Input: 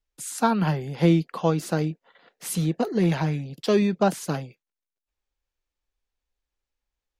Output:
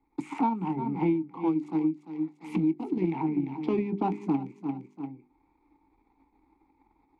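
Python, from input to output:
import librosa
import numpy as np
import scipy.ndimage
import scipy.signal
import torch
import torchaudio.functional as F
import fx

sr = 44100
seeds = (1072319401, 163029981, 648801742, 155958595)

y = fx.wiener(x, sr, points=15)
y = fx.transient(y, sr, attack_db=-7, sustain_db=2)
y = fx.vowel_filter(y, sr, vowel='u')
y = fx.low_shelf(y, sr, hz=110.0, db=6.5)
y = fx.rider(y, sr, range_db=10, speed_s=2.0)
y = fx.high_shelf(y, sr, hz=6200.0, db=-7.5)
y = fx.hum_notches(y, sr, base_hz=50, count=8)
y = fx.doubler(y, sr, ms=22.0, db=-13.0)
y = fx.echo_feedback(y, sr, ms=345, feedback_pct=18, wet_db=-12.5)
y = fx.transient(y, sr, attack_db=6, sustain_db=0)
y = fx.band_squash(y, sr, depth_pct=100)
y = y * 10.0 ** (5.5 / 20.0)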